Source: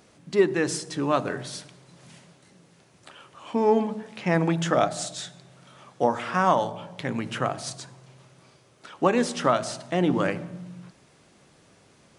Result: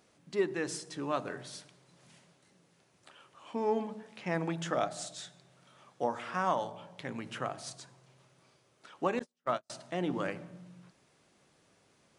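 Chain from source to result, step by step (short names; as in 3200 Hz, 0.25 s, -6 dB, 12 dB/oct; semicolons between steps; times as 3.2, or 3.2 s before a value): 9.19–9.7 gate -20 dBFS, range -45 dB; low shelf 230 Hz -4.5 dB; gain -9 dB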